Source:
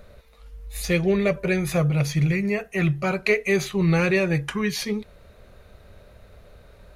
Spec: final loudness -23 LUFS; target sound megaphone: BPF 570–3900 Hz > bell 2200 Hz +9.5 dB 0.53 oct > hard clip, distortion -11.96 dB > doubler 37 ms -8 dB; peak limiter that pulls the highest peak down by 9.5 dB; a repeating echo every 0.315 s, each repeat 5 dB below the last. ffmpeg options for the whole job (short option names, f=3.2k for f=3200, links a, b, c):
-filter_complex "[0:a]alimiter=limit=-16.5dB:level=0:latency=1,highpass=570,lowpass=3.9k,equalizer=f=2.2k:t=o:w=0.53:g=9.5,aecho=1:1:315|630|945|1260|1575|1890|2205:0.562|0.315|0.176|0.0988|0.0553|0.031|0.0173,asoftclip=type=hard:threshold=-21.5dB,asplit=2[a][b];[b]adelay=37,volume=-8dB[c];[a][c]amix=inputs=2:normalize=0,volume=3dB"